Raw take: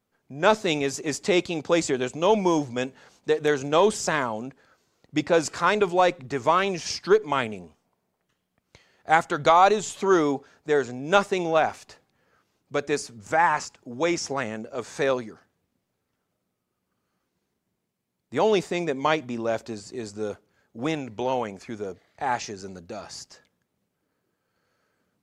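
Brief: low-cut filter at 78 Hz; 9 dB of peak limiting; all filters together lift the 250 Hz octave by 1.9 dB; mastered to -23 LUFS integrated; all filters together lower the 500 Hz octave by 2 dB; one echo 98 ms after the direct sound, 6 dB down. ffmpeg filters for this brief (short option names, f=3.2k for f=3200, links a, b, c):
-af "highpass=78,equalizer=f=250:t=o:g=4.5,equalizer=f=500:t=o:g=-4,alimiter=limit=-12.5dB:level=0:latency=1,aecho=1:1:98:0.501,volume=3dB"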